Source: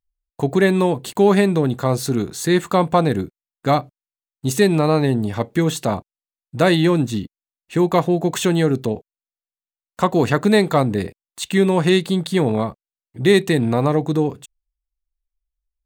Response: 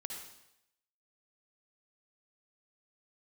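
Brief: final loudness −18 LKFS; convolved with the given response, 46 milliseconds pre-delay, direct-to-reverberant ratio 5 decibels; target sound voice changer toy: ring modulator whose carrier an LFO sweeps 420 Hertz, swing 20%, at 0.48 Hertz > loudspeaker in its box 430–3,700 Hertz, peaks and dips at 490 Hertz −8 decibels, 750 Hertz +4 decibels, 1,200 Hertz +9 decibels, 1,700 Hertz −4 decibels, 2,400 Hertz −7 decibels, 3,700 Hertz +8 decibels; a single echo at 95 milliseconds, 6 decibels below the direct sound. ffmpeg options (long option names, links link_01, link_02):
-filter_complex "[0:a]aecho=1:1:95:0.501,asplit=2[link_01][link_02];[1:a]atrim=start_sample=2205,adelay=46[link_03];[link_02][link_03]afir=irnorm=-1:irlink=0,volume=-3.5dB[link_04];[link_01][link_04]amix=inputs=2:normalize=0,aeval=exprs='val(0)*sin(2*PI*420*n/s+420*0.2/0.48*sin(2*PI*0.48*n/s))':channel_layout=same,highpass=430,equalizer=frequency=490:width_type=q:width=4:gain=-8,equalizer=frequency=750:width_type=q:width=4:gain=4,equalizer=frequency=1200:width_type=q:width=4:gain=9,equalizer=frequency=1700:width_type=q:width=4:gain=-4,equalizer=frequency=2400:width_type=q:width=4:gain=-7,equalizer=frequency=3700:width_type=q:width=4:gain=8,lowpass=frequency=3700:width=0.5412,lowpass=frequency=3700:width=1.3066,volume=2dB"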